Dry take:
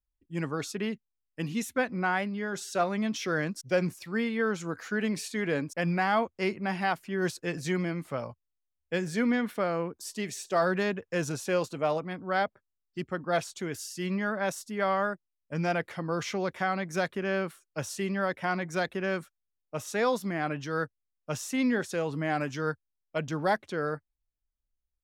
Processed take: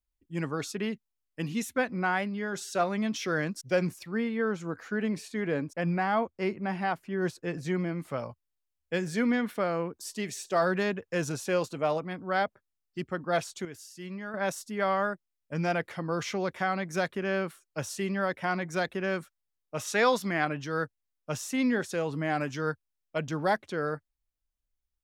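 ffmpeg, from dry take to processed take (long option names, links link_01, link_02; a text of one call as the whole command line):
ffmpeg -i in.wav -filter_complex "[0:a]asettb=1/sr,asplit=3[link_01][link_02][link_03];[link_01]atrim=end=4.034[link_04];[link_02]atrim=start=4.03:end=8,asetpts=PTS-STARTPTS,afade=type=in:duration=0.004:curve=qsin,afade=type=out:start_time=3.966:duration=0.004:curve=qsin,highshelf=frequency=2200:gain=-8.5[link_05];[link_03]atrim=start=7.996[link_06];[link_04][link_05]acrossfade=duration=0.004:curve1=hsin:curve2=qsin[link_07];[link_07][link_06]acrossfade=duration=0.004:curve1=qsin:curve2=hsin,asettb=1/sr,asplit=3[link_08][link_09][link_10];[link_08]atrim=end=19.774[link_11];[link_09]atrim=start=19.77:end=20.45,asetpts=PTS-STARTPTS,afade=type=in:duration=0.004:curve=qsin,afade=type=out:start_time=0.676:duration=0.004:curve=qsin,equalizer=frequency=2700:width=0.31:gain=6.5[link_12];[link_10]atrim=start=20.446[link_13];[link_11][link_12]acrossfade=duration=0.004:curve1=hsin:curve2=qsin[link_14];[link_14][link_13]acrossfade=duration=0.004:curve1=qsin:curve2=hsin,asplit=3[link_15][link_16][link_17];[link_15]atrim=end=13.652[link_18];[link_16]atrim=start=13.648:end=14.342,asetpts=PTS-STARTPTS,volume=-8.5dB[link_19];[link_17]atrim=start=14.338[link_20];[link_18][link_19]acrossfade=duration=0.004:curve1=hsin:curve2=hsin[link_21];[link_21][link_20]acrossfade=duration=0.004:curve1=hsin:curve2=hsin" out.wav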